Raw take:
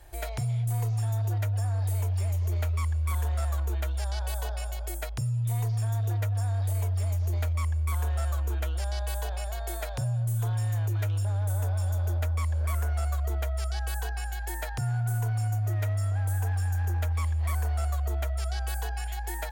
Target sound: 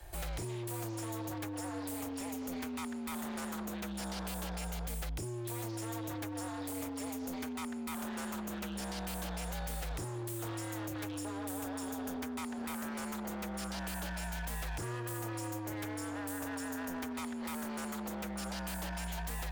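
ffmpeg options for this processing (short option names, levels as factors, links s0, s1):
-filter_complex "[0:a]acrossover=split=90|200|940[s0][s1][s2][s3];[s0]acompressor=threshold=0.0251:ratio=4[s4];[s1]acompressor=threshold=0.00891:ratio=4[s5];[s2]acompressor=threshold=0.00501:ratio=4[s6];[s3]acompressor=threshold=0.01:ratio=4[s7];[s4][s5][s6][s7]amix=inputs=4:normalize=0,aeval=exprs='0.0178*(abs(mod(val(0)/0.0178+3,4)-2)-1)':c=same,volume=1.12"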